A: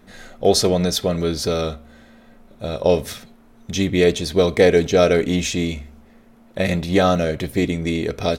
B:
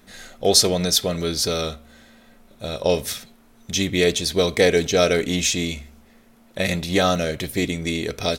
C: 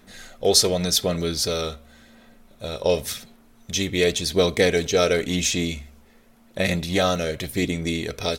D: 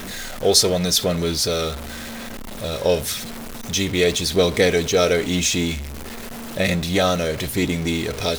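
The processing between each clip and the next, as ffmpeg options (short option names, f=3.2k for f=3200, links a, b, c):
-af "highshelf=f=2.3k:g=10.5,volume=-4dB"
-af "aphaser=in_gain=1:out_gain=1:delay=2.3:decay=0.25:speed=0.9:type=sinusoidal,volume=-2dB"
-af "aeval=exprs='val(0)+0.5*0.0376*sgn(val(0))':c=same,volume=1dB"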